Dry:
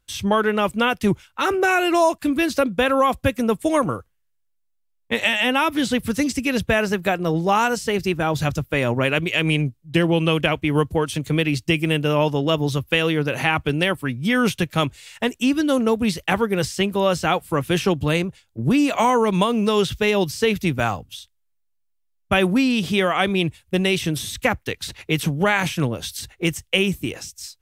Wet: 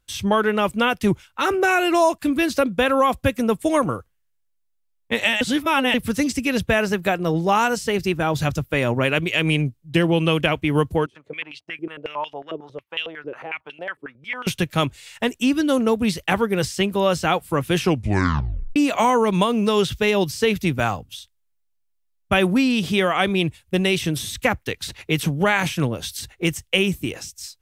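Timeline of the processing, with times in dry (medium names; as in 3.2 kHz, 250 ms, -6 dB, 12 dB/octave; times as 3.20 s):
5.41–5.94 s: reverse
11.06–14.47 s: step-sequenced band-pass 11 Hz 390–3000 Hz
17.82 s: tape stop 0.94 s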